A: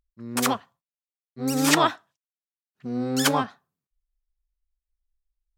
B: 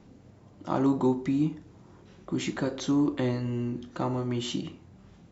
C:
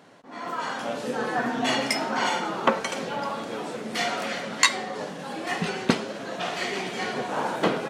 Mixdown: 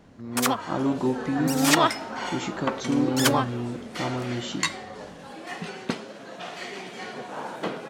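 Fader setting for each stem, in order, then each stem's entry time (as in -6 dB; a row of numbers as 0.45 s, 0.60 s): 0.0 dB, -0.5 dB, -7.0 dB; 0.00 s, 0.00 s, 0.00 s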